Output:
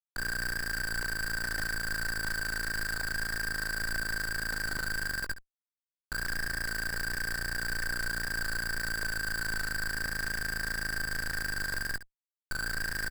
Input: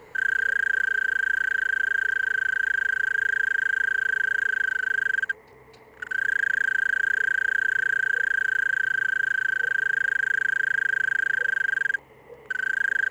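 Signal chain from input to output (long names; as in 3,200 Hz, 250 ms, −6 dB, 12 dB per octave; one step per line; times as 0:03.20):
envelope filter 770–1,800 Hz, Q 7.9, up, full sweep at −22 dBFS
comparator with hysteresis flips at −34.5 dBFS
ambience of single reflections 19 ms −13 dB, 68 ms −14.5 dB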